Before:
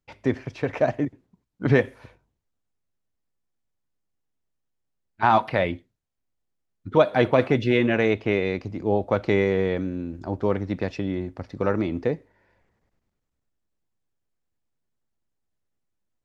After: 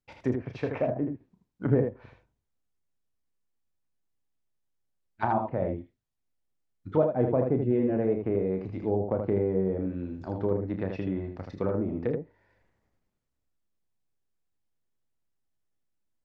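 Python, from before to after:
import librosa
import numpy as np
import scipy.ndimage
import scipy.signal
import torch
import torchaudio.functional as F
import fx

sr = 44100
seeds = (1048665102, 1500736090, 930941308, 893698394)

y = fx.env_lowpass_down(x, sr, base_hz=620.0, full_db=-19.5)
y = fx.room_early_taps(y, sr, ms=(32, 79), db=(-8.5, -5.5))
y = F.gain(torch.from_numpy(y), -5.0).numpy()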